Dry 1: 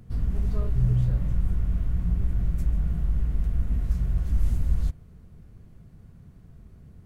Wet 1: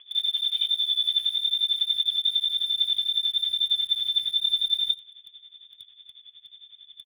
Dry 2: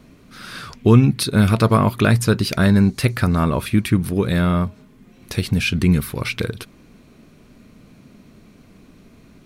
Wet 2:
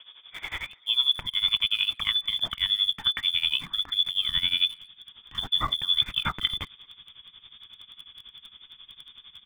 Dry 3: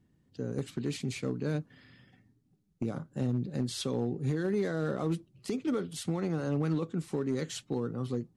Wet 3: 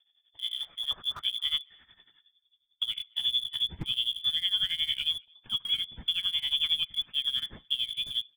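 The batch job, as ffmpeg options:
-filter_complex "[0:a]lowpass=f=3.1k:t=q:w=0.5098,lowpass=f=3.1k:t=q:w=0.6013,lowpass=f=3.1k:t=q:w=0.9,lowpass=f=3.1k:t=q:w=2.563,afreqshift=-3600,areverse,acompressor=threshold=-23dB:ratio=16,areverse,tremolo=f=11:d=0.83,asplit=2[a][b];[b]aeval=exprs='val(0)*gte(abs(val(0)),0.0106)':c=same,volume=-7dB[c];[a][c]amix=inputs=2:normalize=0,asplit=2[d][e];[e]adelay=220,highpass=300,lowpass=3.4k,asoftclip=type=hard:threshold=-22dB,volume=-29dB[f];[d][f]amix=inputs=2:normalize=0,asubboost=boost=11:cutoff=170,volume=2dB"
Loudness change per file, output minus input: +5.0, -6.5, +5.0 LU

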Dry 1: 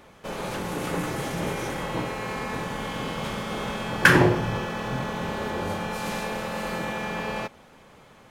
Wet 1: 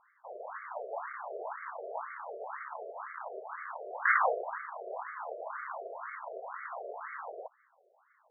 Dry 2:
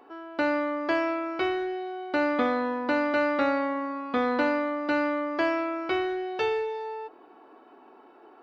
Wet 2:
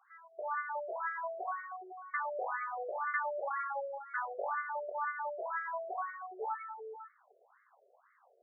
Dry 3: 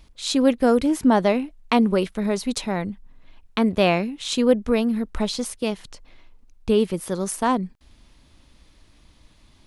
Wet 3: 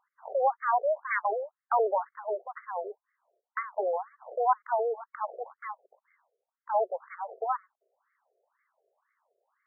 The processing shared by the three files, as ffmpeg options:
-filter_complex "[0:a]aeval=exprs='abs(val(0))':c=same,asplit=2[a][b];[b]adynamicsmooth=sensitivity=5:basefreq=520,volume=0dB[c];[a][c]amix=inputs=2:normalize=0,highpass=f=380:w=0.5412,highpass=f=380:w=1.3066,afftfilt=real='re*between(b*sr/1024,490*pow(1600/490,0.5+0.5*sin(2*PI*2*pts/sr))/1.41,490*pow(1600/490,0.5+0.5*sin(2*PI*2*pts/sr))*1.41)':imag='im*between(b*sr/1024,490*pow(1600/490,0.5+0.5*sin(2*PI*2*pts/sr))/1.41,490*pow(1600/490,0.5+0.5*sin(2*PI*2*pts/sr))*1.41)':win_size=1024:overlap=0.75,volume=-5dB"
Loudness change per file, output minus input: -10.0, -10.5, -9.0 LU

